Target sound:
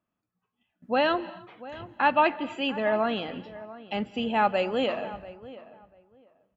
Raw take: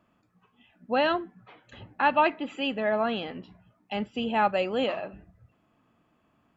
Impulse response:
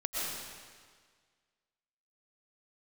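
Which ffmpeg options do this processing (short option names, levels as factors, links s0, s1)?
-filter_complex "[0:a]agate=range=0.141:threshold=0.00158:ratio=16:detection=peak,asplit=2[s0][s1];[s1]adelay=691,lowpass=f=1800:p=1,volume=0.15,asplit=2[s2][s3];[s3]adelay=691,lowpass=f=1800:p=1,volume=0.19[s4];[s0][s2][s4]amix=inputs=3:normalize=0,asplit=2[s5][s6];[1:a]atrim=start_sample=2205,afade=t=out:st=0.29:d=0.01,atrim=end_sample=13230,asetrate=33075,aresample=44100[s7];[s6][s7]afir=irnorm=-1:irlink=0,volume=0.0708[s8];[s5][s8]amix=inputs=2:normalize=0"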